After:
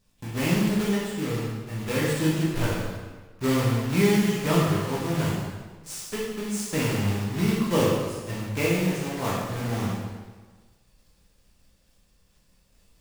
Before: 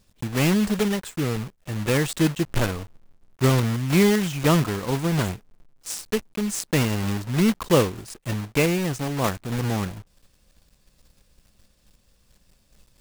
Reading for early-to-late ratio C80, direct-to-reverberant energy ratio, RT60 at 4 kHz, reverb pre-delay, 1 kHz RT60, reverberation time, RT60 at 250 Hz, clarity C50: 2.5 dB, -6.5 dB, 1.2 s, 9 ms, 1.4 s, 1.4 s, 1.4 s, 0.0 dB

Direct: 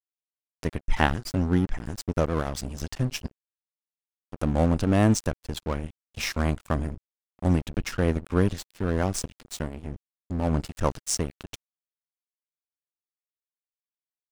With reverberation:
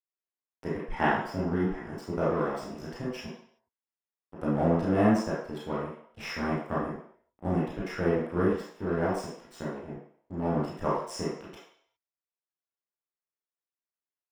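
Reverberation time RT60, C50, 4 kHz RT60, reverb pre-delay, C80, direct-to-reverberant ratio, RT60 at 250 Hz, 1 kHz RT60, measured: 0.60 s, 0.5 dB, 0.60 s, 17 ms, 5.0 dB, -8.5 dB, no reading, 0.60 s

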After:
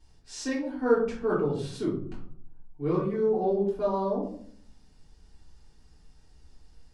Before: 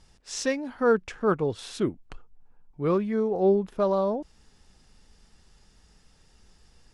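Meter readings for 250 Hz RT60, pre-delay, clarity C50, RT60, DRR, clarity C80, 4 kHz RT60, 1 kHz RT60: 0.90 s, 3 ms, 5.5 dB, 0.55 s, -7.0 dB, 9.0 dB, 0.30 s, 0.50 s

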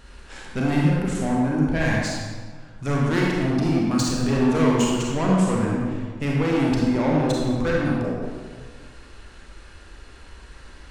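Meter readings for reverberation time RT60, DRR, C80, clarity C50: 1.6 s, -4.0 dB, 1.0 dB, -1.0 dB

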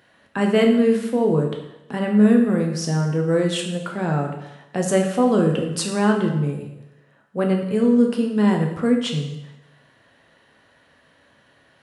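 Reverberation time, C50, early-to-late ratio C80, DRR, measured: 0.90 s, 6.0 dB, 8.5 dB, 1.5 dB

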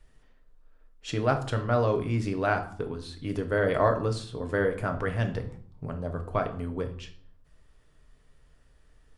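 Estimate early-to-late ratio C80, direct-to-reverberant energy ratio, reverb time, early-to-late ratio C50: 15.5 dB, 5.0 dB, 0.55 s, 11.5 dB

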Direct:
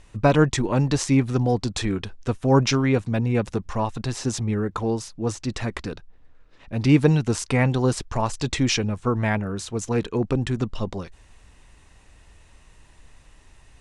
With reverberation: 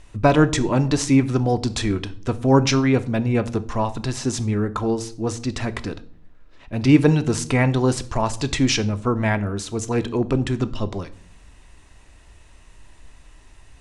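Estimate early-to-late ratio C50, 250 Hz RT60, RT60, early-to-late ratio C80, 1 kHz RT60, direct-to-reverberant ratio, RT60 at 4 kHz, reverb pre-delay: 18.0 dB, 0.85 s, 0.55 s, 22.0 dB, 0.50 s, 11.5 dB, 0.40 s, 3 ms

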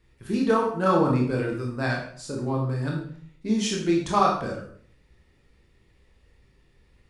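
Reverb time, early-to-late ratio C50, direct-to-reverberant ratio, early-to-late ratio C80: 0.55 s, 4.5 dB, -1.5 dB, 8.0 dB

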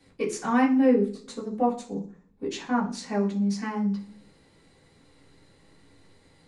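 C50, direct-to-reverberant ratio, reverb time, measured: 11.0 dB, -8.5 dB, 0.45 s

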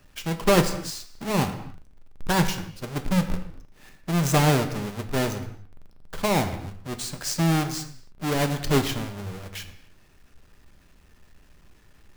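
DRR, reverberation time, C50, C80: 7.0 dB, no single decay rate, 11.0 dB, 12.5 dB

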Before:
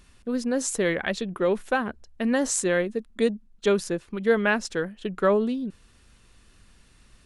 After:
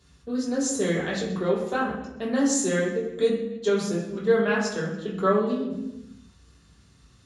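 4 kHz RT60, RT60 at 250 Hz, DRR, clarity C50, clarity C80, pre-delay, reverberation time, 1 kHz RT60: 0.85 s, 1.5 s, -6.5 dB, 4.0 dB, 6.5 dB, 3 ms, 1.1 s, 0.90 s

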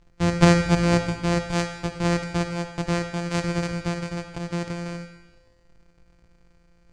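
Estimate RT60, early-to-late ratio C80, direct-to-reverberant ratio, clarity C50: 1.3 s, 11.5 dB, 8.0 dB, 10.0 dB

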